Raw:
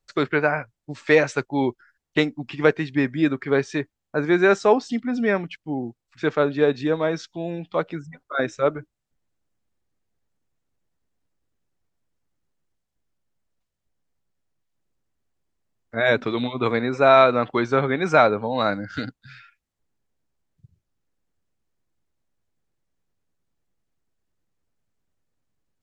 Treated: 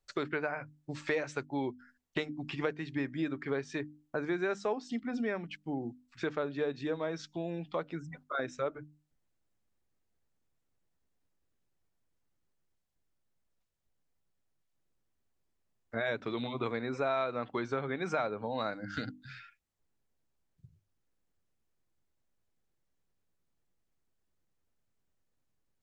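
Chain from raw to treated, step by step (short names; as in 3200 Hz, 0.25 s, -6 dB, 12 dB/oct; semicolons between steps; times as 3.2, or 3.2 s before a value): notches 50/100/150/200/250/300 Hz; compressor 3:1, threshold -30 dBFS, peak gain reduction 15 dB; gain -3.5 dB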